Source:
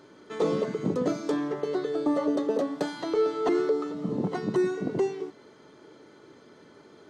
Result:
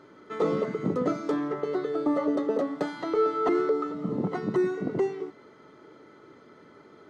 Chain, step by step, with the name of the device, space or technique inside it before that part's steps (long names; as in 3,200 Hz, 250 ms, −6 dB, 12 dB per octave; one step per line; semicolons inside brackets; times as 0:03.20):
inside a helmet (high-shelf EQ 3,400 Hz −9 dB; hollow resonant body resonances 1,300/2,000 Hz, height 10 dB, ringing for 30 ms)